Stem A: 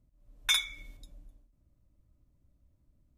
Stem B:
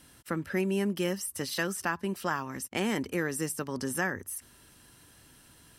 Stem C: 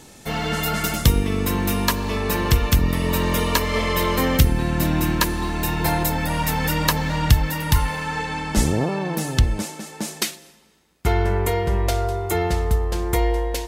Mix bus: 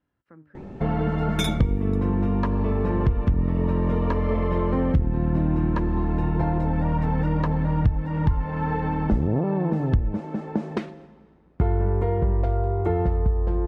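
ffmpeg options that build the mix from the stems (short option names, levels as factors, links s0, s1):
-filter_complex "[0:a]adelay=900,volume=0.668[s0];[1:a]lowpass=1500,flanger=delay=9.5:depth=6.4:regen=82:speed=0.62:shape=triangular,volume=0.211[s1];[2:a]lowpass=1200,lowshelf=f=480:g=8,adelay=550,volume=1.33[s2];[s1][s2]amix=inputs=2:normalize=0,acompressor=threshold=0.0794:ratio=3,volume=1[s3];[s0][s3]amix=inputs=2:normalize=0"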